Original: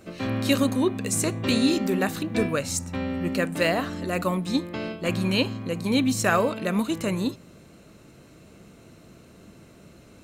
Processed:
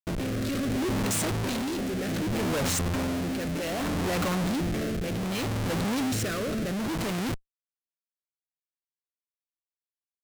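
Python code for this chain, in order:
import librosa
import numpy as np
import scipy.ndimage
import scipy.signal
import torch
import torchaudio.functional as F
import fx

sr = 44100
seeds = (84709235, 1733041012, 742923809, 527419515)

y = fx.schmitt(x, sr, flips_db=-35.5)
y = fx.rotary(y, sr, hz=0.65)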